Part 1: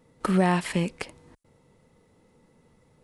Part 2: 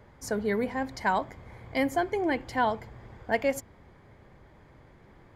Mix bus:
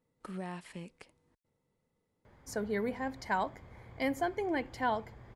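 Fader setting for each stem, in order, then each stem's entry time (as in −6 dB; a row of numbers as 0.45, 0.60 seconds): −19.0, −5.5 decibels; 0.00, 2.25 seconds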